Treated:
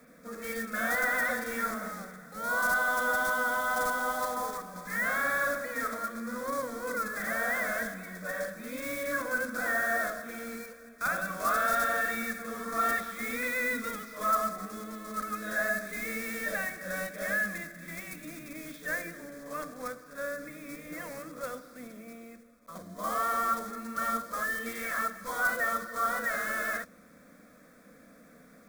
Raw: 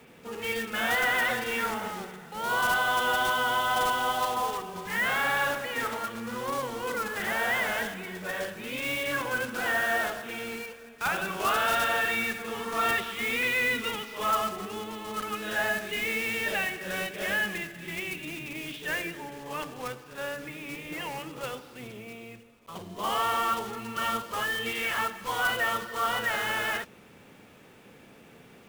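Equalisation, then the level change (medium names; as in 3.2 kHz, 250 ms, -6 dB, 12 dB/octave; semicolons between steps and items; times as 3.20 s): static phaser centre 580 Hz, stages 8; 0.0 dB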